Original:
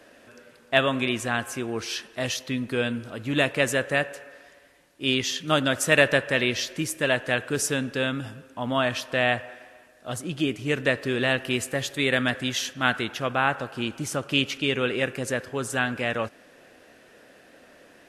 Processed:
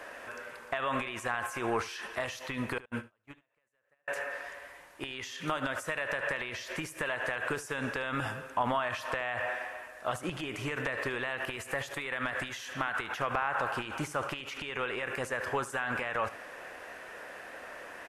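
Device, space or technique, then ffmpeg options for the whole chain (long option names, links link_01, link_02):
de-esser from a sidechain: -filter_complex "[0:a]asplit=2[link_01][link_02];[link_02]highpass=frequency=5000:poles=1,apad=whole_len=797407[link_03];[link_01][link_03]sidechaincompress=threshold=-47dB:ratio=10:attack=1.8:release=46,asettb=1/sr,asplit=3[link_04][link_05][link_06];[link_04]atrim=end=2.784[link_07];[link_05]atrim=start=2.78:end=4.08,asetpts=PTS-STARTPTS,afade=type=in:duration=0.004:curve=qsin,afade=type=out:start_time=1.296:duration=0.004:curve=qsin,agate=range=-44dB:threshold=-31dB:ratio=16:detection=peak[link_08];[link_06]atrim=start=4.076[link_09];[link_07][link_08]acrossfade=duration=0.004:curve1=hsin:curve2=qsin[link_10];[link_10][link_09]acrossfade=duration=0.004:curve1=qsin:curve2=hsin,equalizer=frequency=125:width_type=o:width=1:gain=-5,equalizer=frequency=250:width_type=o:width=1:gain=-7,equalizer=frequency=1000:width_type=o:width=1:gain=9,equalizer=frequency=2000:width_type=o:width=1:gain=5,equalizer=frequency=4000:width_type=o:width=1:gain=-4,aecho=1:1:74:0.133,volume=4dB"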